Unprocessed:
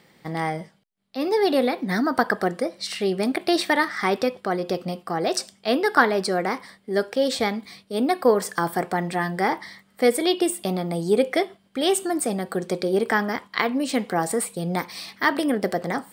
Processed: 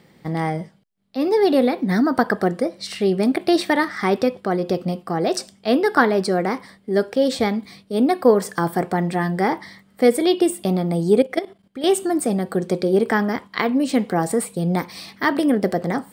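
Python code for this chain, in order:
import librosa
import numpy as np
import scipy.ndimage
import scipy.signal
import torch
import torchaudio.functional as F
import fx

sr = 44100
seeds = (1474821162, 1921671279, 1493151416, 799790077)

y = fx.low_shelf(x, sr, hz=500.0, db=8.5)
y = fx.level_steps(y, sr, step_db=14, at=(11.22, 11.84))
y = F.gain(torch.from_numpy(y), -1.0).numpy()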